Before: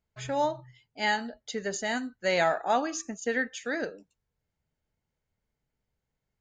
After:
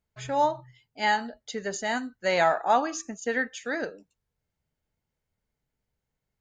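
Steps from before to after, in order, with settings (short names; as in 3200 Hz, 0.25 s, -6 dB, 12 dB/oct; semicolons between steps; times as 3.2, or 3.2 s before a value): dynamic EQ 1000 Hz, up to +6 dB, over -39 dBFS, Q 1.4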